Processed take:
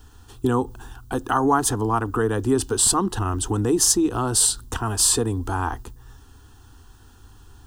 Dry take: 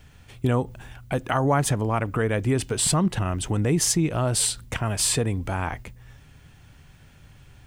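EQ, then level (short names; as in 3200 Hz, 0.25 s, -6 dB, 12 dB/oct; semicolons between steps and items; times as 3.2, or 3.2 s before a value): fixed phaser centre 590 Hz, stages 6; +6.0 dB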